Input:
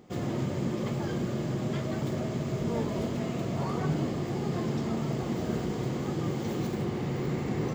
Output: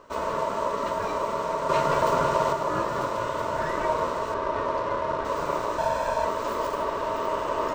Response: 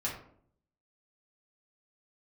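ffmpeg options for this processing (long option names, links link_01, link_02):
-filter_complex "[0:a]asettb=1/sr,asplit=3[link_01][link_02][link_03];[link_01]atrim=end=1.694[link_04];[link_02]atrim=start=1.69:end=2.53,asetpts=PTS-STARTPTS,afade=type=in:duration=0.004:curve=qsin,afade=type=out:start_time=0.836:duration=0.004:curve=qsin,acontrast=35[link_05];[link_03]atrim=start=2.526[link_06];[link_04][link_05]acrossfade=duration=0.004:curve1=hsin:curve2=qsin[link_07];[link_07][link_06]acrossfade=duration=0.004:curve1=qsin:curve2=hsin,asettb=1/sr,asplit=3[link_08][link_09][link_10];[link_08]atrim=end=5.784[link_11];[link_09]atrim=start=5.78:end=6.25,asetpts=PTS-STARTPTS,afade=type=in:duration=0.004:curve=qsin,afade=type=out:start_time=0.466:duration=0.004:curve=qsin,aecho=1:1:1.2:0.94,atrim=end_sample=20727[link_12];[link_10]atrim=start=6.246[link_13];[link_11][link_12]acrossfade=duration=0.004:curve1=hsin:curve2=qsin[link_14];[link_14][link_13]acrossfade=duration=0.004:curve1=qsin:curve2=hsin,aeval=exprs='val(0)*sin(2*PI*780*n/s)':channel_layout=same,asettb=1/sr,asplit=3[link_15][link_16][link_17];[link_15]atrim=end=4.344[link_18];[link_16]atrim=start=4.34:end=5.25,asetpts=PTS-STARTPTS,afade=type=in:duration=0.004:curve=qsin,afade=type=out:start_time=0.906:duration=0.004:curve=qsin,adynamicsmooth=sensitivity=8:basefreq=3100[link_19];[link_17]atrim=start=5.246[link_20];[link_18][link_19]acrossfade=duration=0.004:curve1=hsin:curve2=qsin[link_21];[link_21][link_20]acrossfade=duration=0.004:curve1=qsin:curve2=hsin,volume=6dB"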